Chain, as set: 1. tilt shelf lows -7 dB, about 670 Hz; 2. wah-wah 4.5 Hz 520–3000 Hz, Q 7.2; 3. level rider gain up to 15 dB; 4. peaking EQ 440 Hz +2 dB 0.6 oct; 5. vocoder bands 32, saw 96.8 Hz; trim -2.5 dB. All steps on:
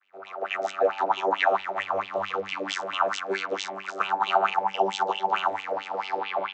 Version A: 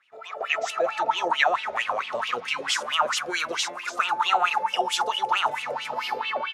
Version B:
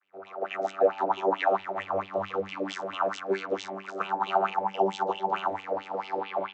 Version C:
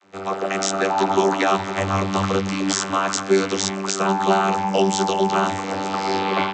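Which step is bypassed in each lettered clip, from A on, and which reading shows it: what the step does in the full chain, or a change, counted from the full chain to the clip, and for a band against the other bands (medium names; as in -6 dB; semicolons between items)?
5, 8 kHz band +10.5 dB; 1, 250 Hz band +9.5 dB; 2, 8 kHz band +13.0 dB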